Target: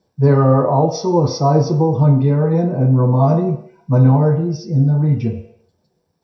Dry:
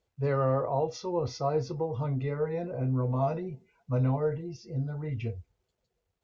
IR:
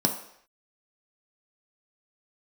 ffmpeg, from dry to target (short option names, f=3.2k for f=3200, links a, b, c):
-filter_complex "[1:a]atrim=start_sample=2205[a];[0:a][a]afir=irnorm=-1:irlink=0,volume=1dB"